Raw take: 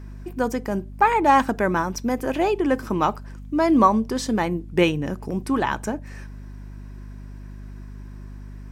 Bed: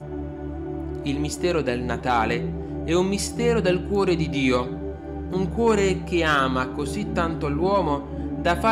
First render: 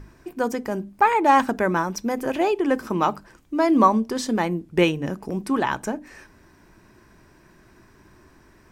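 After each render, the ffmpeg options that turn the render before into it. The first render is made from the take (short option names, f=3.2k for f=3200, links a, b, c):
-af "bandreject=f=50:t=h:w=6,bandreject=f=100:t=h:w=6,bandreject=f=150:t=h:w=6,bandreject=f=200:t=h:w=6,bandreject=f=250:t=h:w=6,bandreject=f=300:t=h:w=6"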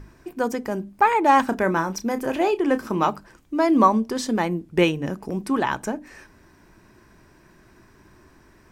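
-filter_complex "[0:a]asettb=1/sr,asplit=3[a][b][c];[a]atrim=end=1.464[d];[b]atrim=start=1.46:end=3.1,asetpts=PTS-STARTPTS,afade=t=in:d=0.004:c=qsin,afade=t=out:st=1.636:d=0.004:c=qsin,asplit=2[e][f];[f]adelay=31,volume=-12dB[g];[e][g]amix=inputs=2:normalize=0,atrim=end_sample=72324[h];[c]atrim=start=3.096[i];[d][h]acrossfade=d=0.004:c1=hsin:c2=qsin[j];[j][i]acrossfade=d=0.004:c1=qsin:c2=hsin"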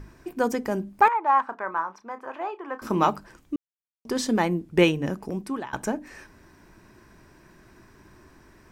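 -filter_complex "[0:a]asettb=1/sr,asplit=3[a][b][c];[a]atrim=end=1.084[d];[b]atrim=start=1.08:end=2.82,asetpts=PTS-STARTPTS,afade=t=in:d=0.004:c=qsin,afade=t=out:st=1.736:d=0.004:c=qsin,bandpass=f=1.1k:t=q:w=2.6[e];[c]atrim=start=2.816[f];[d][e]acrossfade=d=0.004:c1=hsin:c2=qsin[g];[g][f]acrossfade=d=0.004:c1=qsin:c2=hsin,asplit=4[h][i][j][k];[h]atrim=end=3.56,asetpts=PTS-STARTPTS,afade=t=out:st=3.556:d=0.004:c=hsin[l];[i]atrim=start=3.56:end=4.05,asetpts=PTS-STARTPTS,volume=0[m];[j]atrim=start=4.05:end=5.73,asetpts=PTS-STARTPTS,afade=t=in:d=0.004:c=hsin,afade=t=out:st=0.86:d=0.82:c=qsin:silence=0.0841395[n];[k]atrim=start=5.73,asetpts=PTS-STARTPTS,afade=t=in:d=0.004:c=hsin:silence=0.0841395[o];[l][m][n][o]concat=n=4:v=0:a=1"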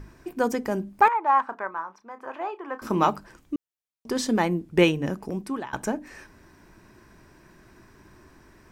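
-filter_complex "[0:a]asplit=3[a][b][c];[a]atrim=end=1.672[d];[b]atrim=start=1.668:end=2.202,asetpts=PTS-STARTPTS,volume=-5dB[e];[c]atrim=start=2.198[f];[d][e]acrossfade=d=0.004:c1=hsin:c2=hsin[g];[g][f]acrossfade=d=0.004:c1=hsin:c2=hsin"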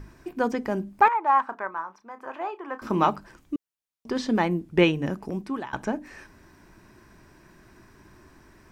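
-filter_complex "[0:a]acrossover=split=5000[a][b];[b]acompressor=threshold=-59dB:ratio=4:attack=1:release=60[c];[a][c]amix=inputs=2:normalize=0,equalizer=f=480:w=3.7:g=-2"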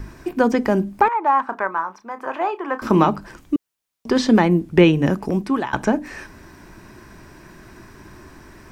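-filter_complex "[0:a]acrossover=split=400[a][b];[b]acompressor=threshold=-27dB:ratio=3[c];[a][c]amix=inputs=2:normalize=0,alimiter=level_in=10dB:limit=-1dB:release=50:level=0:latency=1"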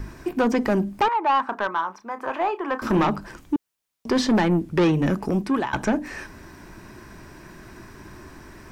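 -af "asoftclip=type=tanh:threshold=-14.5dB"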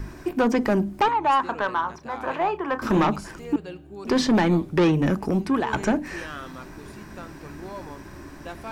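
-filter_complex "[1:a]volume=-17dB[a];[0:a][a]amix=inputs=2:normalize=0"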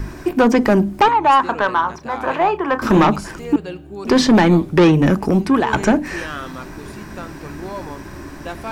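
-af "volume=7.5dB"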